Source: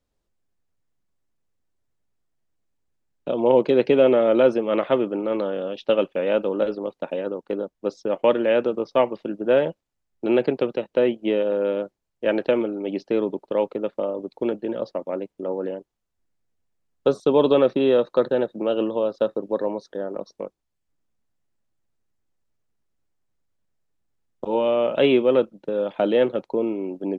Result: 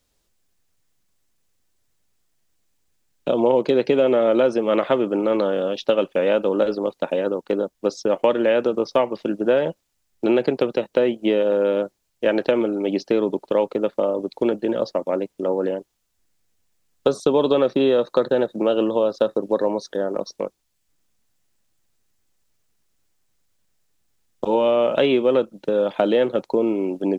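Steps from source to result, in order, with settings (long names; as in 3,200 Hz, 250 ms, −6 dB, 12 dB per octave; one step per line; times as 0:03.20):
high-shelf EQ 2,100 Hz +11.5 dB
downward compressor 4 to 1, threshold −19 dBFS, peak gain reduction 8 dB
dynamic equaliser 2,800 Hz, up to −7 dB, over −45 dBFS, Q 1
level +5 dB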